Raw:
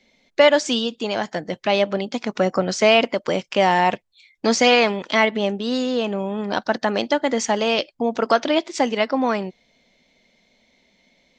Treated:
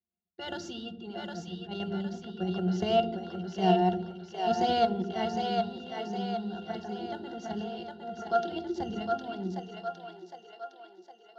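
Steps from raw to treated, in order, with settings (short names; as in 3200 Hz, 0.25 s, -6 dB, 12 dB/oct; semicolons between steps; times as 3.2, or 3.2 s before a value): level quantiser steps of 17 dB; band shelf 5000 Hz +15.5 dB 1.2 oct; gate with hold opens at -42 dBFS; low-pass opened by the level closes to 2400 Hz, open at -15.5 dBFS; transient shaper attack -8 dB, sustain +4 dB; modulation noise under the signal 21 dB; octave resonator F, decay 0.13 s; split-band echo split 410 Hz, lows 80 ms, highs 0.76 s, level -4 dB; on a send at -17 dB: reverb RT60 1.2 s, pre-delay 3 ms; on the sum: gain +6.5 dB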